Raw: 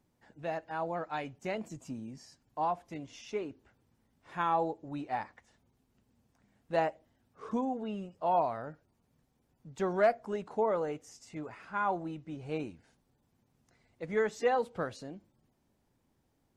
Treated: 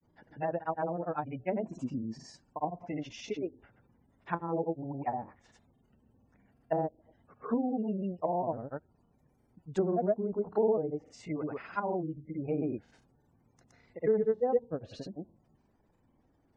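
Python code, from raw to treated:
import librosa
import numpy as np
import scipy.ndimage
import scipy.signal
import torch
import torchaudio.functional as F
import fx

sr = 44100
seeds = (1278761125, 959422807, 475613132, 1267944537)

y = fx.spec_gate(x, sr, threshold_db=-25, keep='strong')
y = fx.granulator(y, sr, seeds[0], grain_ms=100.0, per_s=20.0, spray_ms=100.0, spread_st=0)
y = fx.env_lowpass_down(y, sr, base_hz=440.0, full_db=-32.0)
y = y * 10.0 ** (6.5 / 20.0)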